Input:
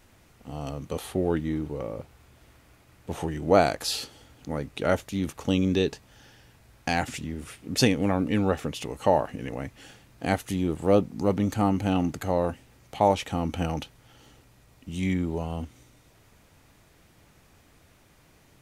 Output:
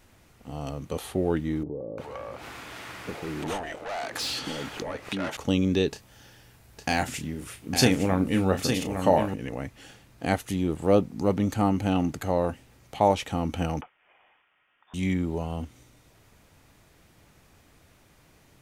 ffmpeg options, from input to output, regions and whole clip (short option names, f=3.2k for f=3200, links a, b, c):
-filter_complex "[0:a]asettb=1/sr,asplit=3[a][b][c];[a]atrim=end=1.634[d];[b]atrim=start=1.63:end=5.37,asetpts=PTS-STARTPTS,afade=t=in:d=0.004:c=qsin,afade=t=out:st=3.736:d=0.004:c=qsin,asplit=2[e][f];[f]highpass=f=720:p=1,volume=29dB,asoftclip=type=tanh:threshold=-4.5dB[g];[e][g]amix=inputs=2:normalize=0,lowpass=f=2.9k:p=1,volume=-6dB,acompressor=threshold=-31dB:ratio=4:attack=3.2:release=140:knee=1:detection=peak,acrossover=split=570[h][i];[i]adelay=350[j];[h][j]amix=inputs=2:normalize=0,atrim=end_sample=164934[k];[c]atrim=start=5.366[l];[d][k]acrossfade=d=0.004:c1=hsin:c2=qsin[m];[m][l]acrossfade=d=0.004:c1=qsin:c2=hsin,asettb=1/sr,asplit=3[n][o][p];[n]atrim=end=5.914[q];[o]atrim=start=5.91:end=9.34,asetpts=PTS-STARTPTS,afade=t=in:d=0.004:c=qsin,afade=t=out:st=3.426:d=0.004:c=qsin,highshelf=f=10k:g=7.5,asplit=2[r][s];[s]adelay=32,volume=-9dB[t];[r][t]amix=inputs=2:normalize=0,atrim=end_sample=151263,aecho=1:1:858:0.473,atrim=end_sample=151263[u];[p]atrim=start=9.336[v];[q][u]acrossfade=d=0.004:c1=hsin:c2=qsin[w];[w][v]acrossfade=d=0.004:c1=qsin:c2=hsin,asettb=1/sr,asplit=3[x][y][z];[x]atrim=end=13.814[aa];[y]atrim=start=13.81:end=14.94,asetpts=PTS-STARTPTS,afade=t=in:d=0.004:c=qsin,afade=t=out:st=1.126:d=0.004:c=qsin,highpass=1.3k,lowpass=f=3.2k:t=q:w=0.5098,lowpass=f=3.2k:t=q:w=0.6013,lowpass=f=3.2k:t=q:w=0.9,lowpass=f=3.2k:t=q:w=2.563,afreqshift=-3800[ab];[z]atrim=start=14.936[ac];[aa][ab]acrossfade=d=0.004:c1=hsin:c2=qsin[ad];[ad][ac]acrossfade=d=0.004:c1=qsin:c2=hsin"